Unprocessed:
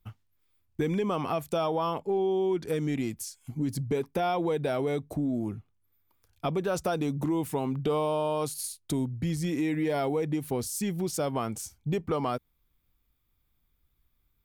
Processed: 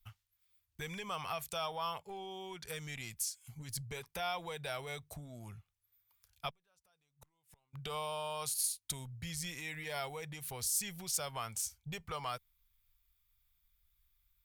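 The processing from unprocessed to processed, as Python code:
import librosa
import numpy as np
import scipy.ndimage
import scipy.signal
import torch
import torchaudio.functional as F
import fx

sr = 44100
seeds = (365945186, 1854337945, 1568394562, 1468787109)

y = fx.gate_flip(x, sr, shuts_db=-25.0, range_db=-36, at=(6.49, 7.73), fade=0.02)
y = fx.tone_stack(y, sr, knobs='10-0-10')
y = y * librosa.db_to_amplitude(2.0)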